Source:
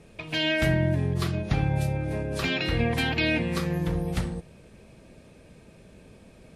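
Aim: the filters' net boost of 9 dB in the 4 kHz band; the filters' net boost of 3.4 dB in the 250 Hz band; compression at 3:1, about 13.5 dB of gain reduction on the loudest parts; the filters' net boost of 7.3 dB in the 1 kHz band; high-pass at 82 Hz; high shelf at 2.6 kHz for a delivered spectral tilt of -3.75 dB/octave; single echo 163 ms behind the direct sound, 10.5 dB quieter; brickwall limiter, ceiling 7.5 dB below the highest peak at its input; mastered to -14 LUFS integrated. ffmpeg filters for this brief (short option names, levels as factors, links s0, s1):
-af "highpass=82,equalizer=f=250:t=o:g=4.5,equalizer=f=1000:t=o:g=8,highshelf=f=2600:g=8.5,equalizer=f=4000:t=o:g=4.5,acompressor=threshold=0.0178:ratio=3,alimiter=level_in=1.26:limit=0.0631:level=0:latency=1,volume=0.794,aecho=1:1:163:0.299,volume=11.9"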